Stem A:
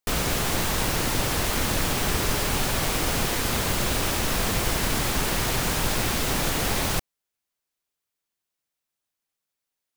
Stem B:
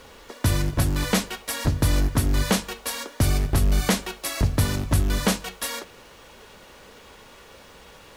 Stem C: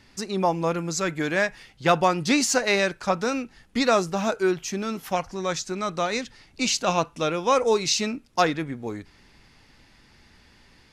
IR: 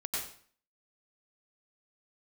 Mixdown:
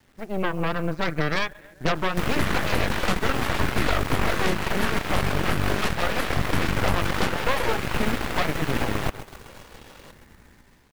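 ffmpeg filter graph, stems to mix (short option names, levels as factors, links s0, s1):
-filter_complex "[0:a]adelay=2100,volume=0.531,asplit=2[s0][s1];[s1]volume=0.251[s2];[1:a]adelay=1950,volume=0.891,asplit=2[s3][s4];[s4]volume=0.251[s5];[2:a]lowshelf=f=500:g=3,dynaudnorm=f=200:g=5:m=2.99,lowpass=f=2100:w=0.5412,lowpass=f=2100:w=1.3066,volume=0.422,asplit=2[s6][s7];[s7]volume=0.0668[s8];[s2][s5][s8]amix=inputs=3:normalize=0,aecho=0:1:132|264|396|528|660|792|924|1056|1188:1|0.57|0.325|0.185|0.106|0.0602|0.0343|0.0195|0.0111[s9];[s0][s3][s6][s9]amix=inputs=4:normalize=0,acrossover=split=140|1200|2400[s10][s11][s12][s13];[s10]acompressor=threshold=0.0251:ratio=4[s14];[s11]acompressor=threshold=0.0224:ratio=4[s15];[s12]acompressor=threshold=0.02:ratio=4[s16];[s13]acompressor=threshold=0.00224:ratio=4[s17];[s14][s15][s16][s17]amix=inputs=4:normalize=0,acrusher=bits=9:mix=0:aa=0.000001,aeval=exprs='0.2*(cos(1*acos(clip(val(0)/0.2,-1,1)))-cos(1*PI/2))+0.0891*(cos(8*acos(clip(val(0)/0.2,-1,1)))-cos(8*PI/2))':c=same"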